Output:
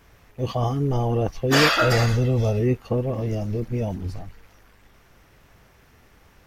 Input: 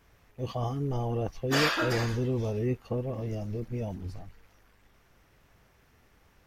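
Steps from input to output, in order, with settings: 1.70–2.60 s: comb 1.5 ms, depth 52%; trim +8 dB

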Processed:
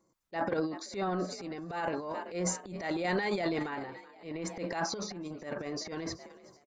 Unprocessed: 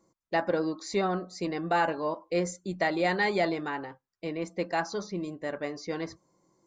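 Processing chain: frequency-shifting echo 377 ms, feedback 52%, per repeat +43 Hz, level -21 dB; random-step tremolo; transient shaper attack -9 dB, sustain +12 dB; trim -4 dB

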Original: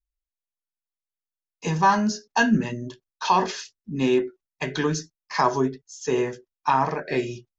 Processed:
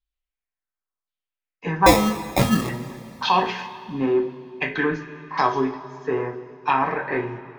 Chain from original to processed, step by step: LFO low-pass saw down 0.93 Hz 980–3800 Hz; 1.86–2.69 s: sample-rate reducer 1.5 kHz, jitter 0%; two-slope reverb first 0.22 s, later 2.7 s, from -18 dB, DRR 3.5 dB; trim -1 dB

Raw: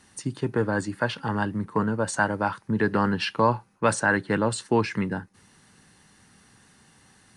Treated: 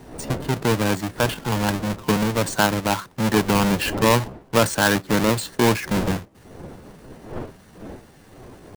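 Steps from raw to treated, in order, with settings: square wave that keeps the level; wind noise 450 Hz -36 dBFS; tempo 0.84×

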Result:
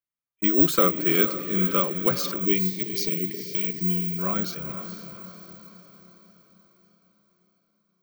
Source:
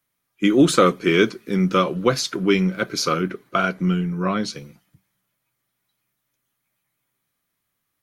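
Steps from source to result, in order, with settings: expander -38 dBFS; in parallel at -2 dB: compressor with a negative ratio -47 dBFS, ratio -1; on the sum: careless resampling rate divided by 2×, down filtered, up zero stuff; on a send: echo that smears into a reverb 464 ms, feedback 50%, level -10 dB; on the sum: spectral selection erased 2.46–4.19 s, 480–1700 Hz; trim -7.5 dB

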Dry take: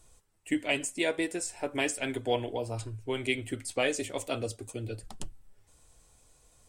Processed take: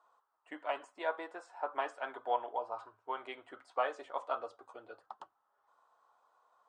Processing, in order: Chebyshev band-pass 820–3300 Hz, order 2; resonant high shelf 1.7 kHz -11.5 dB, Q 3; trim +1 dB

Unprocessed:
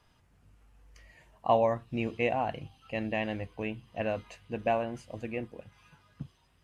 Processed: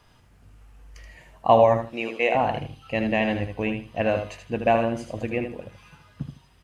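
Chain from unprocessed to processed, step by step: 1.87–2.35 s: high-pass 440 Hz 12 dB/octave; feedback delay 78 ms, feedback 21%, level -7 dB; trim +8 dB

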